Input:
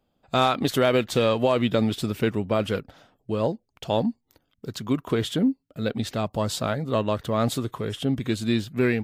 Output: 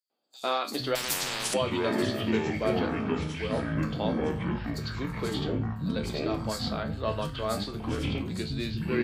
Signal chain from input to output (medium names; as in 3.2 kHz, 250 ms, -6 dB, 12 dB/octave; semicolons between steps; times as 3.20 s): peaking EQ 4.5 kHz +14 dB 0.22 oct; feedback comb 73 Hz, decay 0.28 s, harmonics all, mix 80%; three bands offset in time highs, mids, lows 100/460 ms, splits 250/5100 Hz; ever faster or slower copies 484 ms, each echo -6 st, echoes 3; 0.95–1.54 s: spectrum-flattening compressor 10:1